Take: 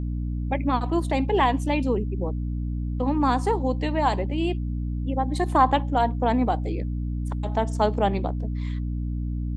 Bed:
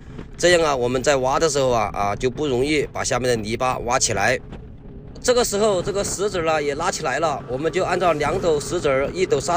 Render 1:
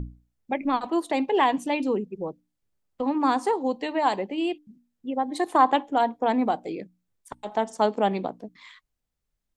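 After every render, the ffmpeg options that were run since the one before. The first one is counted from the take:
-af "bandreject=f=60:t=h:w=6,bandreject=f=120:t=h:w=6,bandreject=f=180:t=h:w=6,bandreject=f=240:t=h:w=6,bandreject=f=300:t=h:w=6"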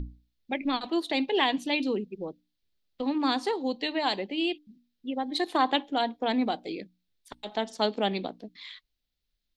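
-af "equalizer=f=125:t=o:w=1:g=-8,equalizer=f=500:t=o:w=1:g=-3,equalizer=f=1000:t=o:w=1:g=-8,equalizer=f=4000:t=o:w=1:g=12,equalizer=f=8000:t=o:w=1:g=-9"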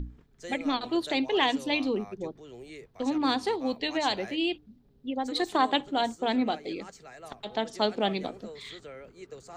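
-filter_complex "[1:a]volume=0.0531[s0];[0:a][s0]amix=inputs=2:normalize=0"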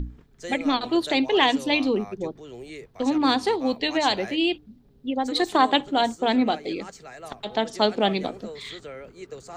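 -af "volume=1.88"

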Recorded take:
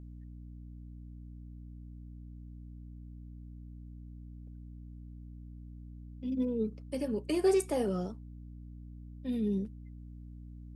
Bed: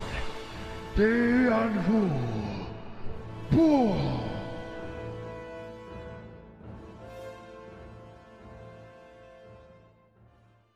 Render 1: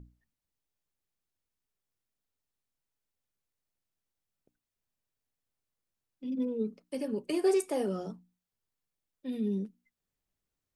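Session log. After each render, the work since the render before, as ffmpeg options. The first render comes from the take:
-af "bandreject=f=60:t=h:w=6,bandreject=f=120:t=h:w=6,bandreject=f=180:t=h:w=6,bandreject=f=240:t=h:w=6,bandreject=f=300:t=h:w=6"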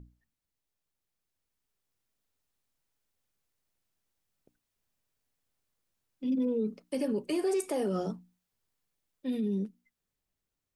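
-af "alimiter=level_in=1.68:limit=0.0631:level=0:latency=1:release=47,volume=0.596,dynaudnorm=f=350:g=9:m=1.88"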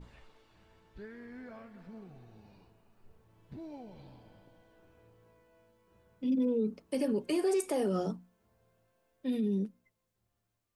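-filter_complex "[1:a]volume=0.0596[s0];[0:a][s0]amix=inputs=2:normalize=0"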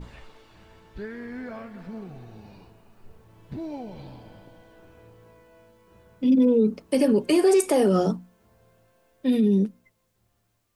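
-af "volume=3.55"

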